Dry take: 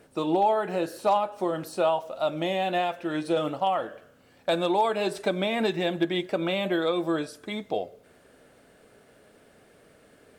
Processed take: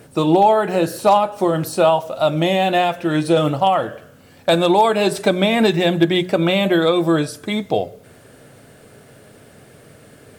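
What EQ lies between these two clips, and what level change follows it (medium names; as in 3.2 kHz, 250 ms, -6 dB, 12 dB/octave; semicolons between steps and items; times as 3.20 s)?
peaking EQ 120 Hz +13 dB 1 oct; treble shelf 6.2 kHz +6.5 dB; hum notches 60/120/180 Hz; +9.0 dB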